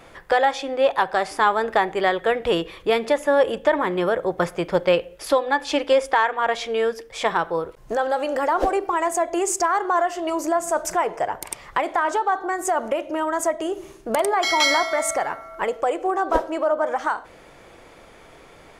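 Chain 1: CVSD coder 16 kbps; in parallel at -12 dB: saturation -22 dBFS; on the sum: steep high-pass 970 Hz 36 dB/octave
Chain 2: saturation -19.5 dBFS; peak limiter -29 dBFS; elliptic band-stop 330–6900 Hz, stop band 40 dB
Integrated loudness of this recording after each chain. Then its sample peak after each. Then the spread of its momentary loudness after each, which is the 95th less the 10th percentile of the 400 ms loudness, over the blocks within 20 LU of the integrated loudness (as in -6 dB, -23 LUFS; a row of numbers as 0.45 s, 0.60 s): -30.0 LUFS, -43.0 LUFS; -13.0 dBFS, -25.5 dBFS; 10 LU, 11 LU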